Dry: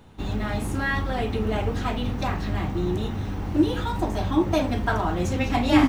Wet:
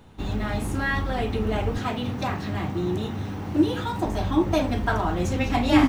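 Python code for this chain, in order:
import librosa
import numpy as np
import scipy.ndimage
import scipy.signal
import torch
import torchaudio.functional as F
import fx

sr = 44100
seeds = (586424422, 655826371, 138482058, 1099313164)

y = fx.highpass(x, sr, hz=85.0, slope=24, at=(1.78, 4.06))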